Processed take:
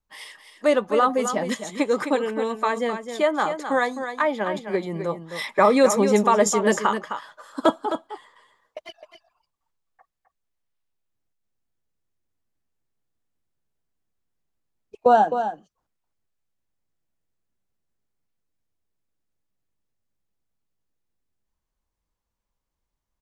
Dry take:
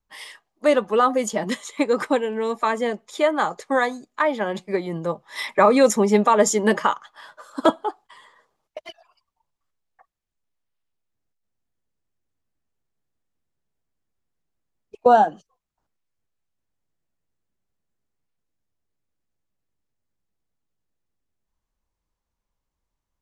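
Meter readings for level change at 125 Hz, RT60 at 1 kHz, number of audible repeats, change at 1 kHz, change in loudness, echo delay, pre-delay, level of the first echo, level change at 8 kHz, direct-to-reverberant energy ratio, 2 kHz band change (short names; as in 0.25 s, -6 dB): -1.5 dB, none, 1, -1.0 dB, -1.0 dB, 0.26 s, none, -9.0 dB, -1.0 dB, none, -1.0 dB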